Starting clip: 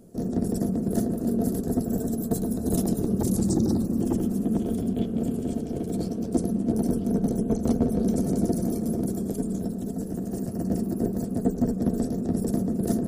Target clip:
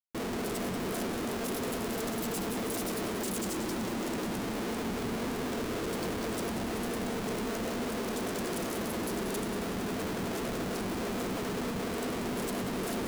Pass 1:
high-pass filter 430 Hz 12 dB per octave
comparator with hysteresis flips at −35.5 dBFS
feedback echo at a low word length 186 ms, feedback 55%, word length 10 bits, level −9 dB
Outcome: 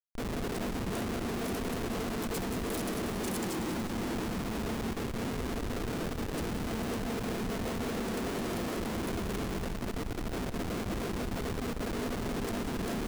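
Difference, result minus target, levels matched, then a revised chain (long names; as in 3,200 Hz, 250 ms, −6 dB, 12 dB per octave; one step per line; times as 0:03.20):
comparator with hysteresis: distortion +4 dB
high-pass filter 430 Hz 12 dB per octave
comparator with hysteresis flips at −44 dBFS
feedback echo at a low word length 186 ms, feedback 55%, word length 10 bits, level −9 dB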